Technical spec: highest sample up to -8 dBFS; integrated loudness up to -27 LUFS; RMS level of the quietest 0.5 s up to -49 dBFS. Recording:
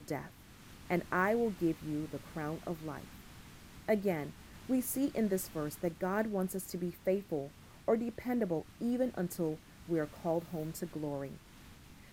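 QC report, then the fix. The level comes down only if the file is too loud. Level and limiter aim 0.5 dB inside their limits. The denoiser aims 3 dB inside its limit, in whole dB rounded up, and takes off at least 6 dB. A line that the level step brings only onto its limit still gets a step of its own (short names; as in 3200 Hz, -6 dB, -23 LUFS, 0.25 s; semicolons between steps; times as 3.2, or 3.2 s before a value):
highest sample -17.0 dBFS: OK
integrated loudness -36.0 LUFS: OK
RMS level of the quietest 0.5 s -55 dBFS: OK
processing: none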